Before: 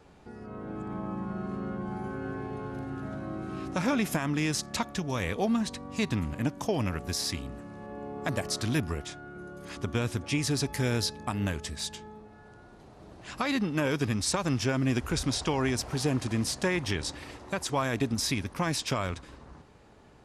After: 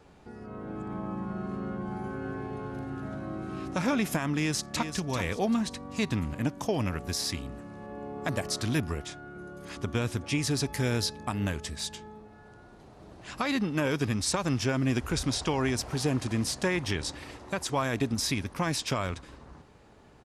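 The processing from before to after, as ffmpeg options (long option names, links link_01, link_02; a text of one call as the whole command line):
ffmpeg -i in.wav -filter_complex "[0:a]asplit=2[link_01][link_02];[link_02]afade=type=in:start_time=4.37:duration=0.01,afade=type=out:start_time=4.93:duration=0.01,aecho=0:1:390|780|1170|1560:0.375837|0.112751|0.0338254|0.0101476[link_03];[link_01][link_03]amix=inputs=2:normalize=0" out.wav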